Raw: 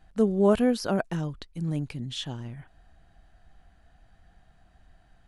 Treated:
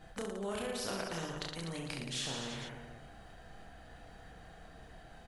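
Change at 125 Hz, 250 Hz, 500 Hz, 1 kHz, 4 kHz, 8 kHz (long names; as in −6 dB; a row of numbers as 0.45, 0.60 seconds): −13.0, −16.0, −14.0, −8.0, −1.5, +2.0 decibels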